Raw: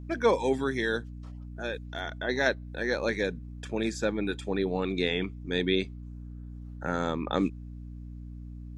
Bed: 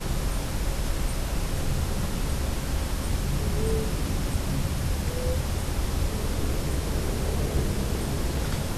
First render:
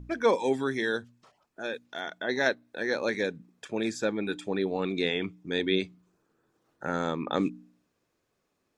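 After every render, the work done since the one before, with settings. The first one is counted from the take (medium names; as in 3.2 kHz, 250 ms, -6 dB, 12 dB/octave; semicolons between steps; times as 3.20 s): de-hum 60 Hz, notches 5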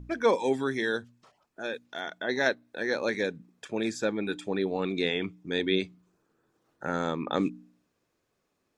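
no audible change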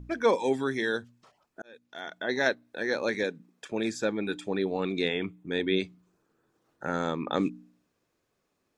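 1.62–2.23 s: fade in; 3.23–3.72 s: high-pass 190 Hz; 5.08–5.76 s: peaking EQ 5.3 kHz -12 dB 0.62 oct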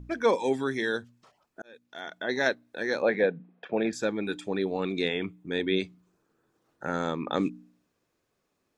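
3.02–3.93 s: cabinet simulation 120–3200 Hz, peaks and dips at 170 Hz +10 dB, 500 Hz +7 dB, 720 Hz +10 dB, 1.6 kHz +3 dB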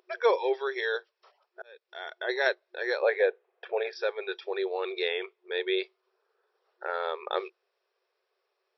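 FFT band-pass 360–5700 Hz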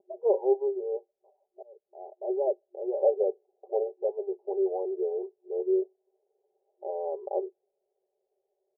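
steep low-pass 800 Hz 72 dB/octave; comb 5.1 ms, depth 74%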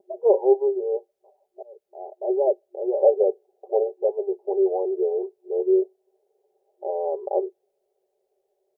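trim +6.5 dB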